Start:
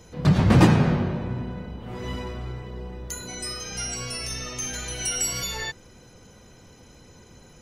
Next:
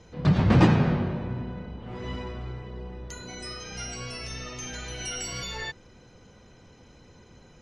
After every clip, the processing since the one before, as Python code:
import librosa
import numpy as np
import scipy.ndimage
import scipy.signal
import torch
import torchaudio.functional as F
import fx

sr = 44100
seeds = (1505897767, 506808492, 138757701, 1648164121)

y = scipy.signal.sosfilt(scipy.signal.butter(2, 4800.0, 'lowpass', fs=sr, output='sos'), x)
y = y * librosa.db_to_amplitude(-2.5)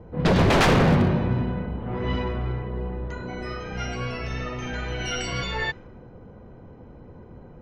y = 10.0 ** (-21.0 / 20.0) * (np.abs((x / 10.0 ** (-21.0 / 20.0) + 3.0) % 4.0 - 2.0) - 1.0)
y = fx.env_lowpass(y, sr, base_hz=800.0, full_db=-23.5)
y = y * librosa.db_to_amplitude(8.5)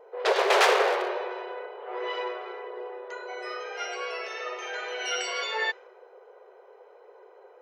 y = fx.brickwall_highpass(x, sr, low_hz=370.0)